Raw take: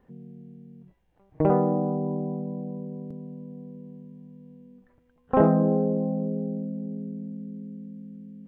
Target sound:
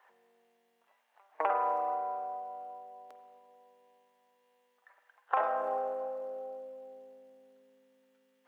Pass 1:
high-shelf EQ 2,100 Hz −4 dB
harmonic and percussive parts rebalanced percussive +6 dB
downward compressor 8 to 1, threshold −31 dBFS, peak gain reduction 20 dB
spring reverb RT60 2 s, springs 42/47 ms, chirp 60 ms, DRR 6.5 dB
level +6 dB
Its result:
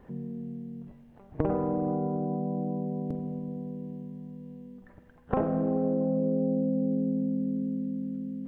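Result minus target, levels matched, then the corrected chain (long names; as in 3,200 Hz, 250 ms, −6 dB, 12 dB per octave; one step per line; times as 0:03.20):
1,000 Hz band −10.0 dB
high-pass filter 830 Hz 24 dB per octave
high-shelf EQ 2,100 Hz −4 dB
harmonic and percussive parts rebalanced percussive +6 dB
downward compressor 8 to 1, threshold −31 dBFS, peak gain reduction 9 dB
spring reverb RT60 2 s, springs 42/47 ms, chirp 60 ms, DRR 6.5 dB
level +6 dB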